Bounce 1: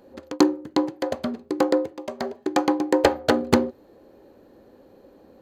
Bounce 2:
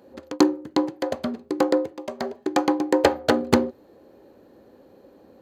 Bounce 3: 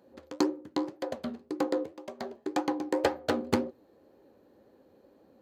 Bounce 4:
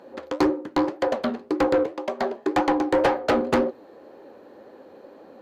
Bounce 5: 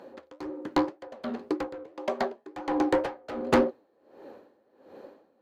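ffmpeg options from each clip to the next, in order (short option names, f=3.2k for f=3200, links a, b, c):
-af "highpass=62"
-af "flanger=delay=5:depth=9.2:regen=67:speed=1.9:shape=triangular,volume=-4.5dB"
-filter_complex "[0:a]asplit=2[a][b];[b]highpass=f=720:p=1,volume=24dB,asoftclip=type=tanh:threshold=-11.5dB[c];[a][c]amix=inputs=2:normalize=0,lowpass=f=1.8k:p=1,volume=-6dB,volume=1.5dB"
-af "aeval=exprs='val(0)*pow(10,-21*(0.5-0.5*cos(2*PI*1.4*n/s))/20)':c=same"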